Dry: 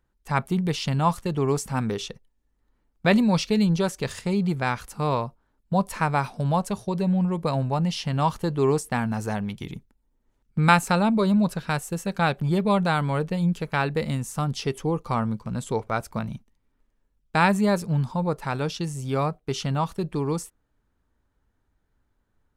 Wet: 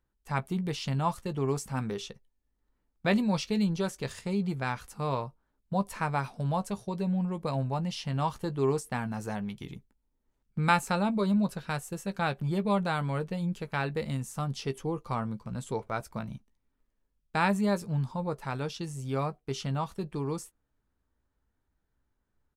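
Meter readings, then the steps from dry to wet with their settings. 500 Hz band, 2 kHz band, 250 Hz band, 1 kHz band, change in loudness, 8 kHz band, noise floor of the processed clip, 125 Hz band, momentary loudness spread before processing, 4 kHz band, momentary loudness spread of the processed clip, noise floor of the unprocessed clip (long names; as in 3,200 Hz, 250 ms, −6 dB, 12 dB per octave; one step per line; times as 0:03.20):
−6.5 dB, −6.5 dB, −6.5 dB, −6.5 dB, −6.5 dB, −6.5 dB, −79 dBFS, −6.5 dB, 9 LU, −6.5 dB, 9 LU, −72 dBFS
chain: double-tracking delay 15 ms −11.5 dB
level −7 dB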